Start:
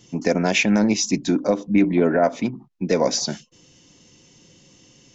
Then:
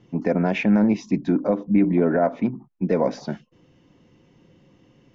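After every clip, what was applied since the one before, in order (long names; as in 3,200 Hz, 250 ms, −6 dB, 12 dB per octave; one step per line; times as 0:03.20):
low-pass filter 1,700 Hz 12 dB per octave
dynamic equaliser 190 Hz, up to +3 dB, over −29 dBFS, Q 2.4
in parallel at −0.5 dB: brickwall limiter −12 dBFS, peak gain reduction 6.5 dB
on the sum: level −6 dB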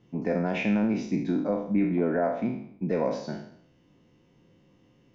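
peak hold with a decay on every bin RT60 0.65 s
level −7.5 dB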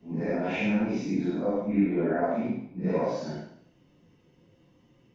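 random phases in long frames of 200 ms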